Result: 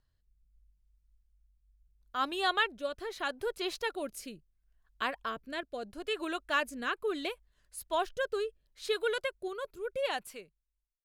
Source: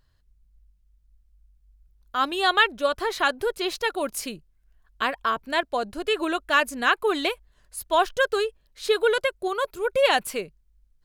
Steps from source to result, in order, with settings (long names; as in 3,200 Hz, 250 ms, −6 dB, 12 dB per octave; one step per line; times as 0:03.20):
fade-out on the ending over 1.61 s
rotating-speaker cabinet horn 0.75 Hz
level −7.5 dB